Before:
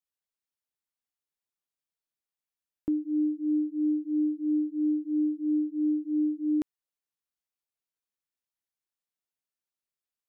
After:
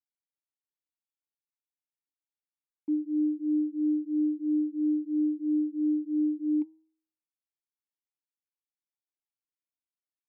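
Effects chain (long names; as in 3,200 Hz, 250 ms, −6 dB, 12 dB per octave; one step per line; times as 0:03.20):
formant filter u
hum removal 158.6 Hz, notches 6
floating-point word with a short mantissa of 8 bits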